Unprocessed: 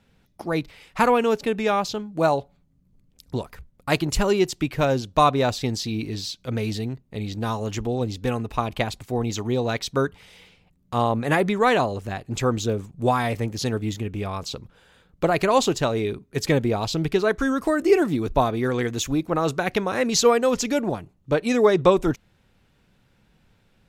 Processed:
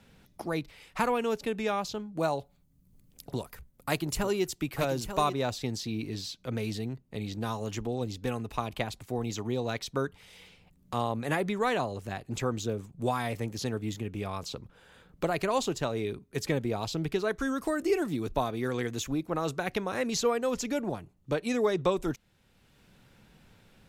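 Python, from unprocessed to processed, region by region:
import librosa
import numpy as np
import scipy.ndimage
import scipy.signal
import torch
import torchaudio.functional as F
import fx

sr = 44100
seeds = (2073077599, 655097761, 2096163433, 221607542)

y = fx.chain(x, sr, fx.high_shelf(hz=9300.0, db=10.5),
    fx.echo_single(ms=889, db=-9.5), at=(2.39, 5.33))
y = fx.peak_eq(y, sr, hz=12000.0, db=3.5, octaves=1.4)
y = fx.band_squash(y, sr, depth_pct=40)
y = F.gain(torch.from_numpy(y), -8.5).numpy()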